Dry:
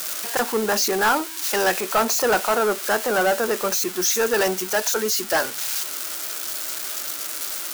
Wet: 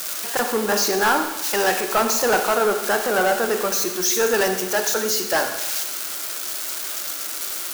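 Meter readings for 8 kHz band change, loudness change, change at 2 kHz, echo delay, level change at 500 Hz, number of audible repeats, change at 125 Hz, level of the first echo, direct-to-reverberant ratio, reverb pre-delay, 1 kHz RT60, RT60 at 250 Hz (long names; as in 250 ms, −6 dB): +1.0 dB, +1.0 dB, +1.0 dB, no echo audible, +1.0 dB, no echo audible, +1.0 dB, no echo audible, 6.0 dB, 26 ms, 1.1 s, 1.2 s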